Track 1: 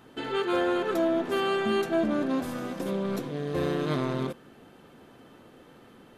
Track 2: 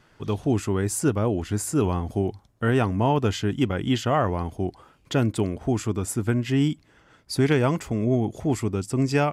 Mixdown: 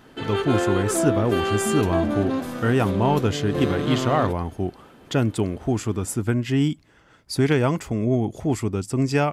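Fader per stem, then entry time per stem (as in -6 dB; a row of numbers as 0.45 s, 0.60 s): +2.5 dB, +1.0 dB; 0.00 s, 0.00 s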